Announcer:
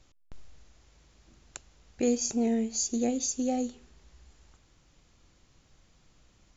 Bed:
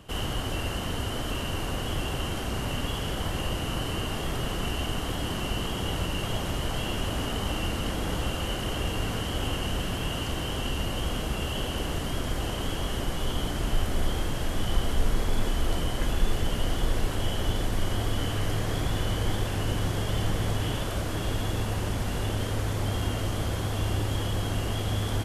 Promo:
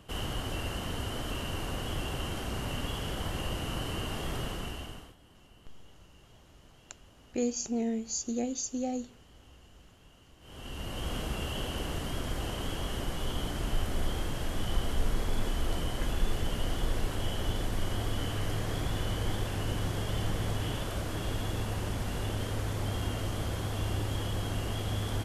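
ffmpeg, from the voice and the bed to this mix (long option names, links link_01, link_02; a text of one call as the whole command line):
ffmpeg -i stem1.wav -i stem2.wav -filter_complex "[0:a]adelay=5350,volume=-4dB[link_01];[1:a]volume=19.5dB,afade=type=out:start_time=4.38:duration=0.77:silence=0.0630957,afade=type=in:start_time=10.4:duration=0.75:silence=0.0630957[link_02];[link_01][link_02]amix=inputs=2:normalize=0" out.wav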